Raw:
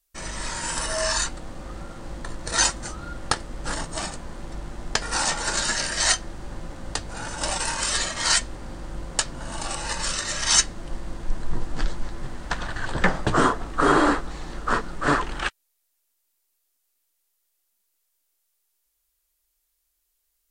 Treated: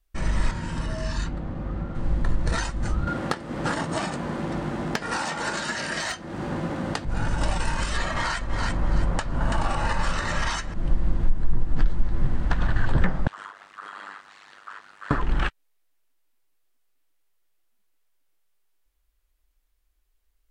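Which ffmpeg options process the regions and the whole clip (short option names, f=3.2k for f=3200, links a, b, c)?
-filter_complex "[0:a]asettb=1/sr,asplit=3[a][b][c];[a]atrim=end=0.514[d];[b]atrim=start=0.51:end=1.95,asetpts=PTS-STARTPTS,afade=t=in:d=0.004:c=qsin,afade=t=out:st=1.436:d=0.004:c=qsin,highpass=f=98:p=1,aemphasis=mode=reproduction:type=75fm,acrossover=split=330|3000[e][f][g];[f]acompressor=threshold=-40dB:ratio=4:attack=3.2:release=140:knee=2.83:detection=peak[h];[e][h][g]amix=inputs=3:normalize=0[i];[c]atrim=start=1.946[j];[d][i]acrossfade=d=0.004:c1=hsin:c2=qsin[k];[k][j]acrossfade=d=0.004:c1=qsin:c2=hsin,asettb=1/sr,asplit=3[l][m][n];[l]atrim=end=3.074[o];[m]atrim=start=3.07:end=7.05,asetpts=PTS-STARTPTS,afade=t=in:d=0.004:c=qsin,afade=t=out:st=3.976:d=0.004:c=qsin,highpass=220,aeval=exprs='0.596*sin(PI/2*1.58*val(0)/0.596)':c=same[p];[n]atrim=start=7.046[q];[o][p]acrossfade=d=0.004:c1=hsin:c2=qsin[r];[r][q]acrossfade=d=0.004:c1=qsin:c2=hsin,asettb=1/sr,asplit=3[s][t][u];[s]atrim=end=7.964[v];[t]atrim=start=7.96:end=10.74,asetpts=PTS-STARTPTS,afade=t=in:d=0.004:c=qsin,afade=t=out:st=2.776:d=0.004:c=qsin,equalizer=f=1k:t=o:w=2.2:g=8,aecho=1:1:331|662|993:0.282|0.0761|0.0205,atrim=end_sample=122598[w];[u]atrim=start=10.736[x];[v][w]acrossfade=d=0.004:c1=hsin:c2=qsin[y];[y][x]acrossfade=d=0.004:c1=qsin:c2=hsin,asettb=1/sr,asplit=3[z][aa][ab];[z]atrim=end=13.274[ac];[aa]atrim=start=13.27:end=15.11,asetpts=PTS-STARTPTS,afade=t=in:d=0.004:c=qsin,afade=t=out:st=1.836:d=0.004:c=qsin,highpass=1.5k,acompressor=threshold=-33dB:ratio=12:attack=3.2:release=140:knee=1:detection=peak,tremolo=f=100:d=0.947[ad];[ab]atrim=start=15.106[ae];[ac][ad]acrossfade=d=0.004:c1=hsin:c2=qsin[af];[af][ae]acrossfade=d=0.004:c1=qsin:c2=hsin,acompressor=threshold=-25dB:ratio=10,bass=f=250:g=11,treble=f=4k:g=-12,volume=2dB"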